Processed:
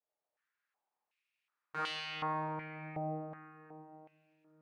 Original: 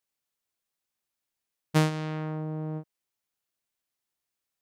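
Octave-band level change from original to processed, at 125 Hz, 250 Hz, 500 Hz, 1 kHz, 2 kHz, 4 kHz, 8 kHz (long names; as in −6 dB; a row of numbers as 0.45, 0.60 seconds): −15.0, −13.0, −8.0, 0.0, −3.0, −1.0, −16.0 decibels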